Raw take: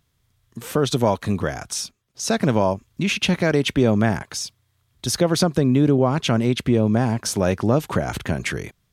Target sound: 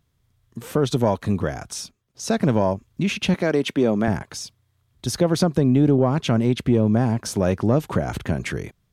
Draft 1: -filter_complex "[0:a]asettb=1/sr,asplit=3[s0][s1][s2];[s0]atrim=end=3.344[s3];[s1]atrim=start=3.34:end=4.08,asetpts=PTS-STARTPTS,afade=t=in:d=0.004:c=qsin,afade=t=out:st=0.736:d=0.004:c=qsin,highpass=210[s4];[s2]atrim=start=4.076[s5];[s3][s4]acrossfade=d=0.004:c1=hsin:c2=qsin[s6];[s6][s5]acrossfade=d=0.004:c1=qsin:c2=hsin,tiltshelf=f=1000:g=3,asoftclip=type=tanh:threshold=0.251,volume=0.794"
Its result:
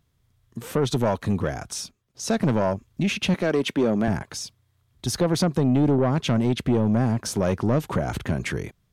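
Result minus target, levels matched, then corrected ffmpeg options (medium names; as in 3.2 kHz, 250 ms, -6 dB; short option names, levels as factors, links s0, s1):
saturation: distortion +15 dB
-filter_complex "[0:a]asettb=1/sr,asplit=3[s0][s1][s2];[s0]atrim=end=3.344[s3];[s1]atrim=start=3.34:end=4.08,asetpts=PTS-STARTPTS,afade=t=in:d=0.004:c=qsin,afade=t=out:st=0.736:d=0.004:c=qsin,highpass=210[s4];[s2]atrim=start=4.076[s5];[s3][s4]acrossfade=d=0.004:c1=hsin:c2=qsin[s6];[s6][s5]acrossfade=d=0.004:c1=qsin:c2=hsin,tiltshelf=f=1000:g=3,asoftclip=type=tanh:threshold=0.841,volume=0.794"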